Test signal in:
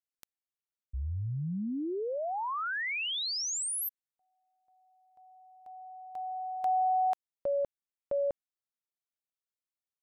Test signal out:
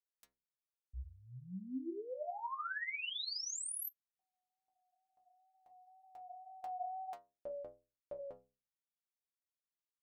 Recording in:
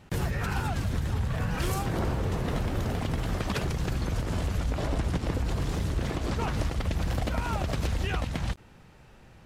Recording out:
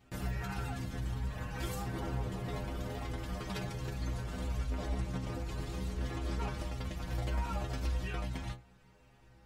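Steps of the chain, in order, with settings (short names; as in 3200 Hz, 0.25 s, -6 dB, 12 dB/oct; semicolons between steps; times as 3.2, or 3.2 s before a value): flange 0.65 Hz, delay 2.3 ms, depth 6.2 ms, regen -68%; wow and flutter 27 cents; metallic resonator 61 Hz, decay 0.45 s, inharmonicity 0.008; gain +5 dB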